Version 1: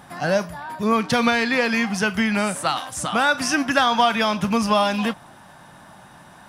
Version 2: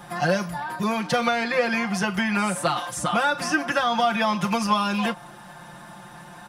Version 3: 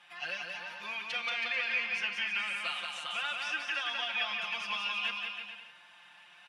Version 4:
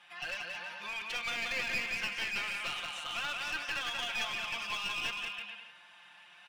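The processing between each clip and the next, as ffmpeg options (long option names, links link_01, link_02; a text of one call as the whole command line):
ffmpeg -i in.wav -filter_complex "[0:a]acrossover=split=370|1600[link_01][link_02][link_03];[link_01]acompressor=threshold=-31dB:ratio=4[link_04];[link_02]acompressor=threshold=-24dB:ratio=4[link_05];[link_03]acompressor=threshold=-33dB:ratio=4[link_06];[link_04][link_05][link_06]amix=inputs=3:normalize=0,aecho=1:1:5.7:0.92" out.wav
ffmpeg -i in.wav -af "bandpass=frequency=2700:width_type=q:width=4:csg=0,aecho=1:1:180|324|439.2|531.4|605.1:0.631|0.398|0.251|0.158|0.1" out.wav
ffmpeg -i in.wav -af "aeval=exprs='clip(val(0),-1,0.015)':channel_layout=same" out.wav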